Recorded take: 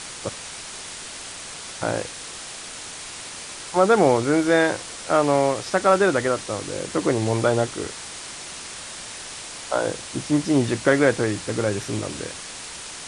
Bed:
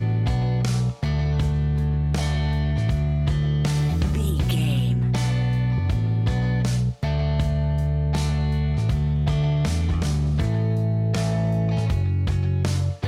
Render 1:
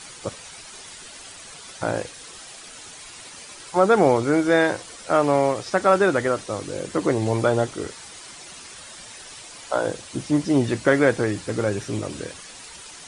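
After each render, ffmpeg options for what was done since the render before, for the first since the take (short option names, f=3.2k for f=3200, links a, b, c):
-af "afftdn=nr=9:nf=-37"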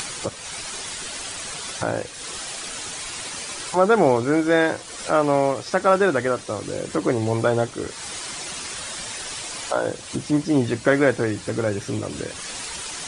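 -af "acompressor=mode=upward:threshold=-22dB:ratio=2.5"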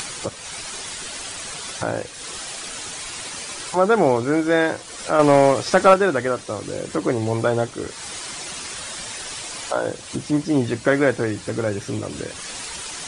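-filter_complex "[0:a]asettb=1/sr,asplit=3[a][b][c];[a]atrim=end=5.194[d];[b]atrim=start=5.19:end=5.94,asetpts=PTS-STARTPTS,afade=t=in:d=0.004:c=qsin,afade=t=out:st=0.746:d=0.004:c=qsin,acontrast=70[e];[c]atrim=start=5.936[f];[d][e]acrossfade=d=0.004:c1=hsin:c2=qsin[g];[g][f]acrossfade=d=0.004:c1=qsin:c2=hsin"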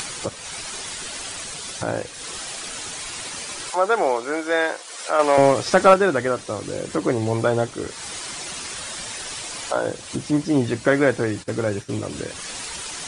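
-filter_complex "[0:a]asettb=1/sr,asplit=3[a][b][c];[a]atrim=end=1.444[d];[b]atrim=start=1.44:end=1.88,asetpts=PTS-STARTPTS,afade=t=in:d=0.004:c=qsin,afade=t=out:st=0.436:d=0.004:c=qsin,equalizer=f=1.2k:w=0.57:g=-3.5[e];[c]atrim=start=1.876[f];[d][e]acrossfade=d=0.004:c1=hsin:c2=qsin[g];[g][f]acrossfade=d=0.004:c1=qsin:c2=hsin,asettb=1/sr,asplit=3[h][i][j];[h]atrim=end=3.704[k];[i]atrim=start=3.7:end=5.38,asetpts=PTS-STARTPTS,afade=t=in:d=0.004:c=qsin,afade=t=out:st=1.676:d=0.004:c=qsin,highpass=520[l];[j]atrim=start=5.376[m];[k][l]acrossfade=d=0.004:c1=hsin:c2=qsin[n];[n][m]acrossfade=d=0.004:c1=qsin:c2=hsin,asplit=3[o][p][q];[o]afade=t=out:st=11.42:d=0.02[r];[p]agate=range=-33dB:threshold=-28dB:ratio=3:release=100:detection=peak,afade=t=in:st=11.42:d=0.02,afade=t=out:st=11.94:d=0.02[s];[q]afade=t=in:st=11.94:d=0.02[t];[r][s][t]amix=inputs=3:normalize=0"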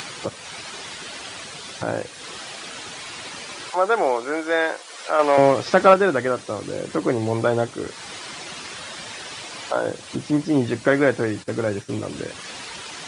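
-filter_complex "[0:a]acrossover=split=5100[a][b];[b]acompressor=threshold=-45dB:ratio=4:attack=1:release=60[c];[a][c]amix=inputs=2:normalize=0,highpass=96"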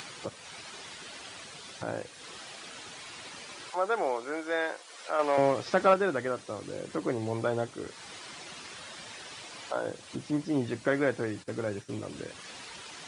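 -af "volume=-9.5dB"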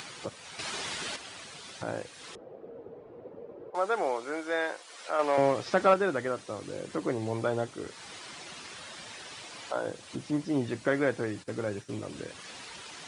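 -filter_complex "[0:a]asettb=1/sr,asplit=3[a][b][c];[a]atrim=end=2.354[d];[b]atrim=start=2.35:end=3.75,asetpts=PTS-STARTPTS,afade=t=in:d=0.004:c=qsin,afade=t=out:st=1.396:d=0.004:c=qsin,lowpass=f=480:t=q:w=4.8[e];[c]atrim=start=3.746[f];[d][e]acrossfade=d=0.004:c1=hsin:c2=qsin[g];[g][f]acrossfade=d=0.004:c1=qsin:c2=hsin,asplit=3[h][i][j];[h]atrim=end=0.592[k];[i]atrim=start=0.588:end=1.162,asetpts=PTS-STARTPTS,volume=8.5dB[l];[j]atrim=start=1.158[m];[k][l]acrossfade=d=0.004:c1=hsin:c2=hsin[n];[n][m]acrossfade=d=0.004:c1=hsin:c2=hsin"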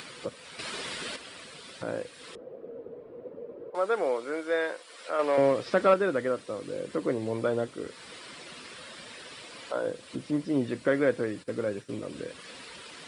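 -af "equalizer=f=100:t=o:w=0.33:g=-6,equalizer=f=250:t=o:w=0.33:g=4,equalizer=f=500:t=o:w=0.33:g=6,equalizer=f=800:t=o:w=0.33:g=-7,equalizer=f=6.3k:t=o:w=0.33:g=-8"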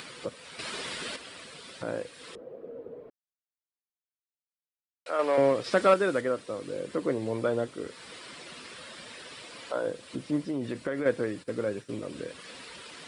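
-filter_complex "[0:a]asettb=1/sr,asplit=3[a][b][c];[a]atrim=end=5.644[d];[b]atrim=start=5.64:end=6.21,asetpts=PTS-STARTPTS,afade=t=in:d=0.004:c=qsin,afade=t=out:st=0.566:d=0.004:c=qsin,highshelf=f=3.5k:g=8[e];[c]atrim=start=6.206[f];[d][e]acrossfade=d=0.004:c1=hsin:c2=qsin[g];[g][f]acrossfade=d=0.004:c1=qsin:c2=hsin,asettb=1/sr,asplit=3[h][i][j];[h]atrim=end=10.484[k];[i]atrim=start=10.48:end=11.06,asetpts=PTS-STARTPTS,afade=t=in:d=0.004:c=qsin,afade=t=out:st=0.576:d=0.004:c=qsin,acompressor=threshold=-27dB:ratio=6:attack=3.2:release=140:knee=1:detection=peak[l];[j]atrim=start=11.056[m];[k][l]acrossfade=d=0.004:c1=hsin:c2=qsin[n];[n][m]acrossfade=d=0.004:c1=qsin:c2=hsin,asplit=3[o][p][q];[o]atrim=end=3.1,asetpts=PTS-STARTPTS,afade=t=out:st=3.096:d=0.004:c=hsin[r];[p]atrim=start=3.1:end=5.06,asetpts=PTS-STARTPTS,volume=0[s];[q]atrim=start=5.06,asetpts=PTS-STARTPTS,afade=t=in:d=0.004:c=hsin[t];[r][s][t]concat=n=3:v=0:a=1"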